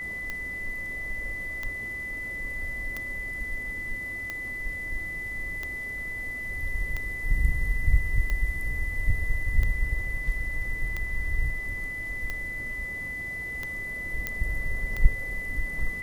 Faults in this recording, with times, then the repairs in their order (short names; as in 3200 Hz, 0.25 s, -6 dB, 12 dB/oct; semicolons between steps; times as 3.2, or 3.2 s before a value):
tick 45 rpm -18 dBFS
tone 2000 Hz -32 dBFS
14.27 pop -13 dBFS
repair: de-click; notch 2000 Hz, Q 30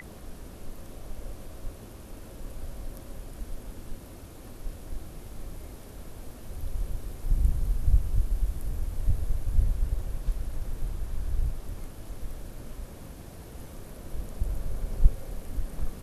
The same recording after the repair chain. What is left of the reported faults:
none